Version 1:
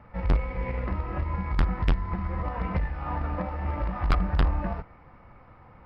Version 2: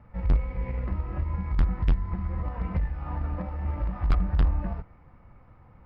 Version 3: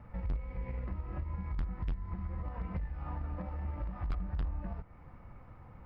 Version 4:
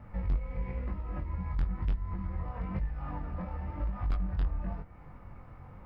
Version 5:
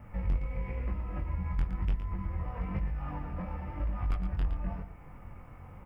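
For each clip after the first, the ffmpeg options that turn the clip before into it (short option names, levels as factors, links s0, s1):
-af "lowshelf=f=260:g=9,volume=0.422"
-af "acompressor=threshold=0.01:ratio=2.5,volume=1.12"
-af "flanger=delay=19.5:depth=3.3:speed=1,volume=2"
-af "aexciter=amount=1.5:drive=2.4:freq=2200,aecho=1:1:115:0.355"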